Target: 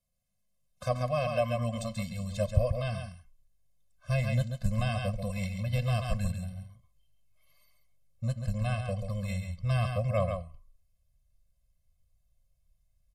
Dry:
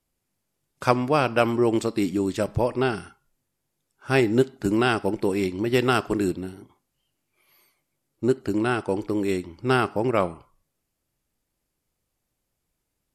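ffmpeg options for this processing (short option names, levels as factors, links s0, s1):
-filter_complex "[0:a]equalizer=f=1400:t=o:w=0.39:g=-13,aecho=1:1:136:0.447,acrossover=split=620[s0][s1];[s0]asubboost=boost=9.5:cutoff=74[s2];[s1]alimiter=limit=0.119:level=0:latency=1:release=43[s3];[s2][s3]amix=inputs=2:normalize=0,afftfilt=real='re*eq(mod(floor(b*sr/1024/250),2),0)':imag='im*eq(mod(floor(b*sr/1024/250),2),0)':win_size=1024:overlap=0.75,volume=0.668"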